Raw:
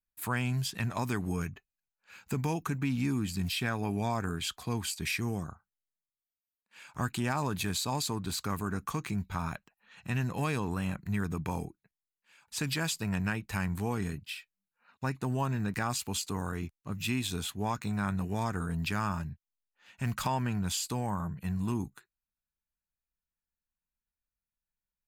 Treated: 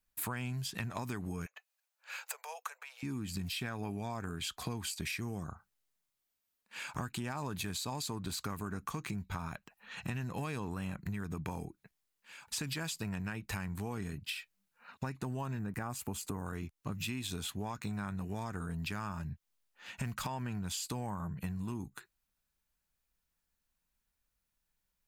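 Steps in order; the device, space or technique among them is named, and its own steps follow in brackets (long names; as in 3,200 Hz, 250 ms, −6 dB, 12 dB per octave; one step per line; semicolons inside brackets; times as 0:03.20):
0:15.59–0:16.46: parametric band 4,100 Hz −12 dB 1.7 octaves
serial compression, leveller first (downward compressor 1.5 to 1, threshold −41 dBFS, peak gain reduction 5.5 dB; downward compressor 6 to 1, threshold −45 dBFS, peak gain reduction 13 dB)
0:01.46–0:03.03: Butterworth high-pass 500 Hz 72 dB per octave
level +9 dB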